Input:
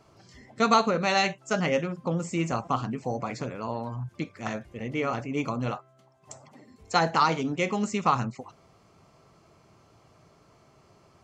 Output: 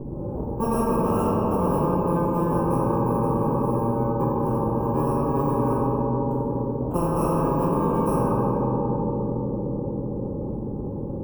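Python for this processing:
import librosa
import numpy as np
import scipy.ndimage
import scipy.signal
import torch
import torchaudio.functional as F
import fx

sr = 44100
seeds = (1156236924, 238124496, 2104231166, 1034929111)

y = fx.bit_reversed(x, sr, seeds[0], block=64)
y = scipy.signal.sosfilt(scipy.signal.cheby2(4, 50, 1800.0, 'lowpass', fs=sr, output='sos'), y)
y = fx.room_shoebox(y, sr, seeds[1], volume_m3=180.0, walls='hard', distance_m=1.0)
y = fx.spectral_comp(y, sr, ratio=4.0)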